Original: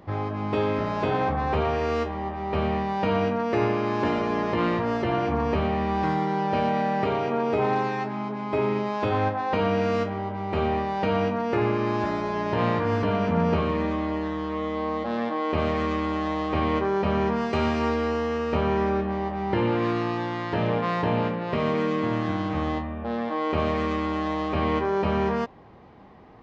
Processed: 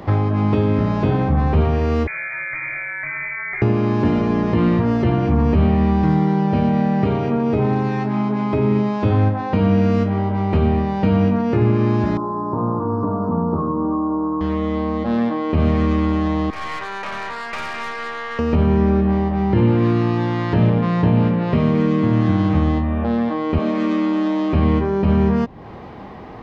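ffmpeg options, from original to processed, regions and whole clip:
ffmpeg -i in.wav -filter_complex "[0:a]asettb=1/sr,asplit=3[link_01][link_02][link_03];[link_01]atrim=end=2.074[link_04];[link_02]atrim=start=2.07:end=3.62,asetpts=PTS-STARTPTS,afade=type=in:duration=0.004:curve=qsin,afade=type=out:start_time=1.546:duration=0.004:curve=qsin,acompressor=threshold=-27dB:ratio=4:attack=3.2:release=140:knee=1:detection=peak,lowpass=frequency=2100:width_type=q:width=0.5098,lowpass=frequency=2100:width_type=q:width=0.6013,lowpass=frequency=2100:width_type=q:width=0.9,lowpass=frequency=2100:width_type=q:width=2.563,afreqshift=-2500[link_05];[link_03]atrim=start=3.616[link_06];[link_04][link_05]acrossfade=duration=0.004:curve1=hsin:curve2=qsin[link_07];[link_07][link_06]acrossfade=duration=0.004:curve1=qsin:curve2=hsin,asettb=1/sr,asplit=3[link_08][link_09][link_10];[link_08]atrim=end=12.174[link_11];[link_09]atrim=start=12.17:end=14.41,asetpts=PTS-STARTPTS,afade=type=in:duration=0.004:curve=qsin,afade=type=out:start_time=2.236:duration=0.004:curve=qsin,asuperstop=centerf=2600:order=8:qfactor=0.6,highpass=180,equalizer=frequency=190:width_type=q:width=4:gain=-8,equalizer=frequency=430:width_type=q:width=4:gain=-4,equalizer=frequency=620:width_type=q:width=4:gain=-7,equalizer=frequency=1100:width_type=q:width=4:gain=7,equalizer=frequency=2200:width_type=q:width=4:gain=-10,lowpass=frequency=3500:width=0.5412,lowpass=frequency=3500:width=1.3066,asplit=2[link_12][link_13];[link_13]adelay=32,volume=-12.5dB[link_14];[link_12][link_14]amix=inputs=2:normalize=0,atrim=end_sample=98784[link_15];[link_10]atrim=start=14.406[link_16];[link_11][link_15]acrossfade=duration=0.004:curve1=hsin:curve2=qsin[link_17];[link_17][link_16]acrossfade=duration=0.004:curve1=qsin:curve2=hsin,asettb=1/sr,asplit=3[link_18][link_19][link_20];[link_18]atrim=end=16.504[link_21];[link_19]atrim=start=16.5:end=18.39,asetpts=PTS-STARTPTS,afade=type=in:duration=0.004:curve=qsin,afade=type=out:start_time=1.886:duration=0.004:curve=qsin,highpass=1200,highshelf=frequency=3000:width_type=q:width=1.5:gain=-12,aeval=exprs='(tanh(44.7*val(0)+0.5)-tanh(0.5))/44.7':channel_layout=same[link_22];[link_20]atrim=start=18.386[link_23];[link_21][link_22]acrossfade=duration=0.004:curve1=hsin:curve2=qsin[link_24];[link_24][link_23]acrossfade=duration=0.004:curve1=qsin:curve2=hsin,asettb=1/sr,asplit=3[link_25][link_26][link_27];[link_25]atrim=end=23.584[link_28];[link_26]atrim=start=23.58:end=24.53,asetpts=PTS-STARTPTS,afade=type=in:duration=0.004:curve=qsin,afade=type=out:start_time=0.946:duration=0.004:curve=qsin,highpass=frequency=210:width=0.5412,highpass=frequency=210:width=1.3066,asplit=2[link_29][link_30];[link_30]adelay=29,volume=-7dB[link_31];[link_29][link_31]amix=inputs=2:normalize=0,atrim=end_sample=41895[link_32];[link_27]atrim=start=24.526[link_33];[link_28][link_32]acrossfade=duration=0.004:curve1=hsin:curve2=qsin[link_34];[link_34][link_33]acrossfade=duration=0.004:curve1=qsin:curve2=hsin,acrossover=split=270[link_35][link_36];[link_36]acompressor=threshold=-39dB:ratio=6[link_37];[link_35][link_37]amix=inputs=2:normalize=0,alimiter=level_in=19dB:limit=-1dB:release=50:level=0:latency=1,volume=-5dB" out.wav

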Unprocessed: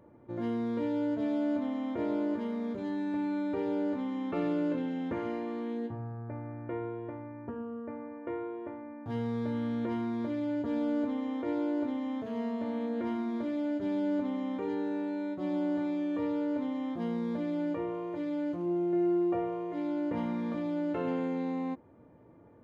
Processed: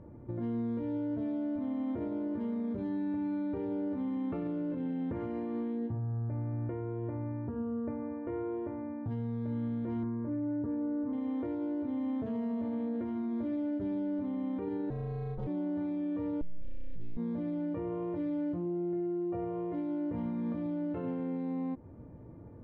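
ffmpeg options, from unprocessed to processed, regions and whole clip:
ffmpeg -i in.wav -filter_complex "[0:a]asettb=1/sr,asplit=3[link_01][link_02][link_03];[link_01]atrim=end=10.034[link_04];[link_02]atrim=start=10.03:end=11.13,asetpts=PTS-STARTPTS,afade=type=in:duration=0.004:curve=qsin,afade=type=out:start_time=1.096:duration=0.004:curve=qsin,lowpass=frequency=1700:width=0.5412,lowpass=frequency=1700:width=1.3066,equalizer=frequency=680:width_type=o:width=0.23:gain=-9,aecho=1:1:6.8:0.32,atrim=end_sample=48510[link_05];[link_03]atrim=start=11.126[link_06];[link_04][link_05]acrossfade=duration=0.004:curve1=hsin:curve2=qsin[link_07];[link_07][link_06]acrossfade=duration=0.004:curve1=qsin:curve2=hsin,asettb=1/sr,asplit=3[link_08][link_09][link_10];[link_08]atrim=end=14.904[link_11];[link_09]atrim=start=14.9:end=15.47,asetpts=PTS-STARTPTS,afade=type=in:duration=0.004:curve=qsin,afade=type=out:start_time=0.566:duration=0.004:curve=qsin,bass=frequency=250:gain=-7,treble=frequency=4000:gain=6,aeval=exprs='val(0)*sin(2*PI*160*n/s)':channel_layout=same[link_12];[link_10]atrim=start=15.466[link_13];[link_11][link_12]acrossfade=duration=0.004:curve1=hsin:curve2=qsin[link_14];[link_14][link_13]acrossfade=duration=0.004:curve1=qsin:curve2=hsin,asettb=1/sr,asplit=3[link_15][link_16][link_17];[link_15]atrim=end=16.414[link_18];[link_16]atrim=start=16.41:end=17.17,asetpts=PTS-STARTPTS,afade=type=in:duration=0.004:curve=qsin,afade=type=out:start_time=0.756:duration=0.004:curve=qsin,aecho=1:1:6.2:0.83,atrim=end_sample=33516,aeval=exprs='abs(val(0))':channel_layout=same,asuperstop=centerf=950:order=4:qfactor=0.51[link_19];[link_17]atrim=start=17.166[link_20];[link_18][link_19]acrossfade=duration=0.004:curve1=hsin:curve2=qsin[link_21];[link_21][link_20]acrossfade=duration=0.004:curve1=qsin:curve2=hsin,aemphasis=mode=reproduction:type=riaa,alimiter=level_in=4.5dB:limit=-24dB:level=0:latency=1:release=130,volume=-4.5dB" out.wav

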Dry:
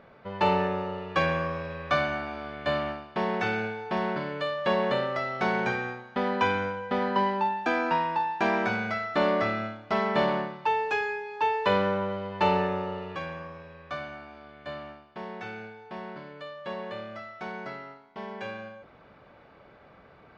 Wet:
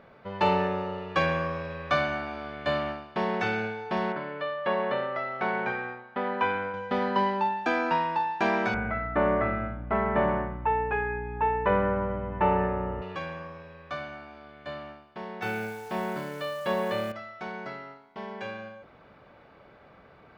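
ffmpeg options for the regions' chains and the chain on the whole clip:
ffmpeg -i in.wav -filter_complex "[0:a]asettb=1/sr,asplit=3[link_01][link_02][link_03];[link_01]atrim=end=4.124[link_04];[link_02]atrim=start=4.12:end=6.74,asetpts=PTS-STARTPTS,afade=type=in:duration=0.004:curve=qsin,afade=type=out:start_time=2.616:duration=0.004:curve=qsin,lowpass=2400,lowshelf=frequency=290:gain=-8.5[link_05];[link_03]atrim=start=6.736[link_06];[link_04][link_05]acrossfade=duration=0.004:curve1=hsin:curve2=qsin[link_07];[link_07][link_06]acrossfade=duration=0.004:curve1=qsin:curve2=hsin,asettb=1/sr,asplit=3[link_08][link_09][link_10];[link_08]atrim=end=8.744[link_11];[link_09]atrim=start=8.74:end=13.02,asetpts=PTS-STARTPTS,afade=type=in:duration=0.004:curve=qsin,afade=type=out:start_time=4.276:duration=0.004:curve=qsin,lowpass=frequency=2100:width=0.5412,lowpass=frequency=2100:width=1.3066,aeval=exprs='val(0)+0.0158*(sin(2*PI*60*n/s)+sin(2*PI*2*60*n/s)/2+sin(2*PI*3*60*n/s)/3+sin(2*PI*4*60*n/s)/4+sin(2*PI*5*60*n/s)/5)':channel_layout=same[link_12];[link_10]atrim=start=13.016[link_13];[link_11][link_12]acrossfade=duration=0.004:curve1=hsin:curve2=qsin[link_14];[link_14][link_13]acrossfade=duration=0.004:curve1=qsin:curve2=hsin,asettb=1/sr,asplit=3[link_15][link_16][link_17];[link_15]atrim=end=15.424[link_18];[link_16]atrim=start=15.42:end=17.12,asetpts=PTS-STARTPTS,afade=type=in:duration=0.004:curve=qsin,afade=type=out:start_time=1.696:duration=0.004:curve=qsin,acontrast=66,acrusher=bits=9:dc=4:mix=0:aa=0.000001,asplit=2[link_19][link_20];[link_20]adelay=27,volume=-12dB[link_21];[link_19][link_21]amix=inputs=2:normalize=0,atrim=end_sample=74970[link_22];[link_17]atrim=start=17.116[link_23];[link_18][link_22]acrossfade=duration=0.004:curve1=hsin:curve2=qsin[link_24];[link_24][link_23]acrossfade=duration=0.004:curve1=qsin:curve2=hsin" out.wav

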